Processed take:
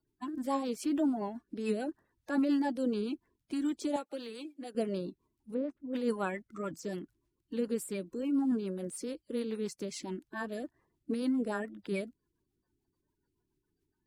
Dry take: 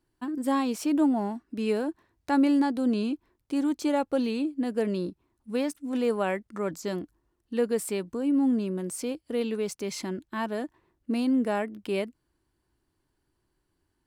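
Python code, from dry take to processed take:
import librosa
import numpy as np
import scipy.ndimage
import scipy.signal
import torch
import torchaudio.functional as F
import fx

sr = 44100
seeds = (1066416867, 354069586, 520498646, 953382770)

y = fx.spec_quant(x, sr, step_db=30)
y = fx.lowpass(y, sr, hz=1200.0, slope=12, at=(5.53, 5.93), fade=0.02)
y = fx.rotary(y, sr, hz=7.0)
y = fx.highpass(y, sr, hz=930.0, slope=6, at=(3.96, 4.75))
y = F.gain(torch.from_numpy(y), -4.0).numpy()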